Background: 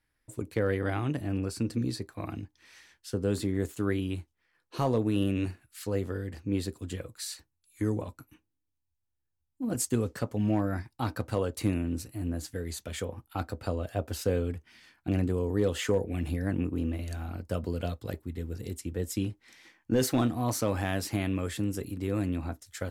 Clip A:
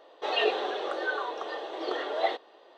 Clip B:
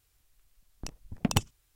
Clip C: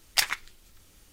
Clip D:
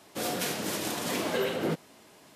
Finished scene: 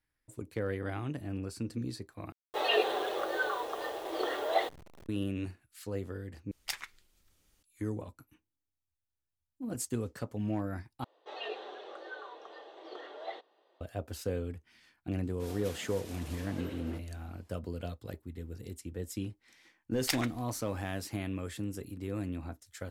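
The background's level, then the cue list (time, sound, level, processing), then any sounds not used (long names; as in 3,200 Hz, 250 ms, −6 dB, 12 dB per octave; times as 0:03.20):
background −6.5 dB
0:02.32: overwrite with A −1.5 dB + hold until the input has moved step −44 dBFS
0:06.51: overwrite with C −13.5 dB
0:11.04: overwrite with A −14 dB
0:15.24: mix in D −16.5 dB
0:19.91: mix in C −9 dB, fades 0.02 s
not used: B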